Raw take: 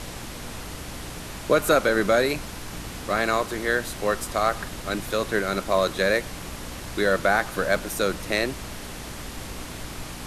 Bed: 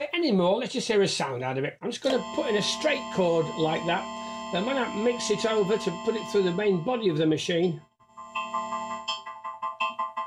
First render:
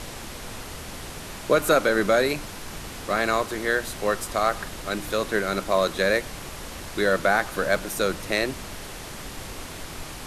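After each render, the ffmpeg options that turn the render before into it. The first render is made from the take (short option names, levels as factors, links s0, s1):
-af "bandreject=f=60:t=h:w=4,bandreject=f=120:t=h:w=4,bandreject=f=180:t=h:w=4,bandreject=f=240:t=h:w=4,bandreject=f=300:t=h:w=4"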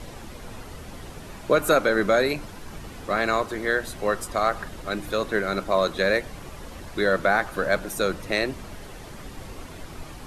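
-af "afftdn=nr=9:nf=-38"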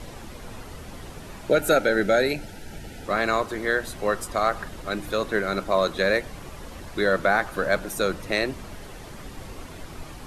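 -filter_complex "[0:a]asettb=1/sr,asplit=3[s0][s1][s2];[s0]atrim=end=1.504[s3];[s1]atrim=start=1.5:end=3.06,asetpts=PTS-STARTPTS,afade=t=in:d=0.004:c=qsin,afade=t=out:st=1.556:d=0.004:c=qsin,asuperstop=centerf=1100:order=8:qfactor=3[s4];[s2]atrim=start=3.056[s5];[s3][s4]acrossfade=d=0.004:c1=hsin:c2=qsin[s6];[s6][s5]acrossfade=d=0.004:c1=qsin:c2=hsin"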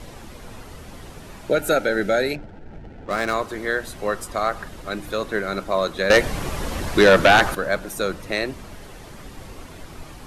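-filter_complex "[0:a]asettb=1/sr,asplit=3[s0][s1][s2];[s0]atrim=end=2.354[s3];[s1]atrim=start=2.35:end=3.34,asetpts=PTS-STARTPTS,afade=t=in:d=0.004:c=qsin,afade=t=out:st=0.986:d=0.004:c=qsin,adynamicsmooth=sensitivity=7.5:basefreq=670[s4];[s2]atrim=start=3.336[s5];[s3][s4]acrossfade=d=0.004:c1=hsin:c2=qsin[s6];[s6][s5]acrossfade=d=0.004:c1=qsin:c2=hsin,asettb=1/sr,asplit=3[s7][s8][s9];[s7]atrim=end=6.104[s10];[s8]atrim=start=6.1:end=7.55,asetpts=PTS-STARTPTS,afade=t=in:d=0.004:c=qsin,afade=t=out:st=1.446:d=0.004:c=qsin,aeval=exprs='0.447*sin(PI/2*2.51*val(0)/0.447)':c=same[s11];[s9]atrim=start=7.546[s12];[s10][s11]acrossfade=d=0.004:c1=hsin:c2=qsin[s13];[s13][s12]acrossfade=d=0.004:c1=qsin:c2=hsin"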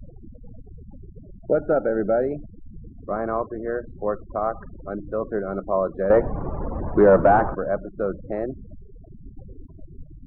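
-af "afftfilt=real='re*gte(hypot(re,im),0.0398)':imag='im*gte(hypot(re,im),0.0398)':win_size=1024:overlap=0.75,lowpass=f=1100:w=0.5412,lowpass=f=1100:w=1.3066"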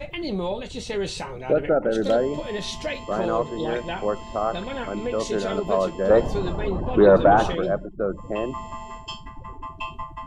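-filter_complex "[1:a]volume=0.596[s0];[0:a][s0]amix=inputs=2:normalize=0"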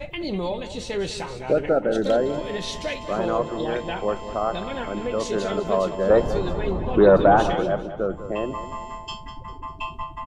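-af "aecho=1:1:199|398|597|796:0.237|0.0972|0.0399|0.0163"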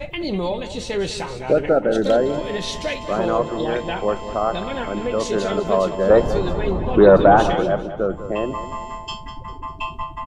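-af "volume=1.5"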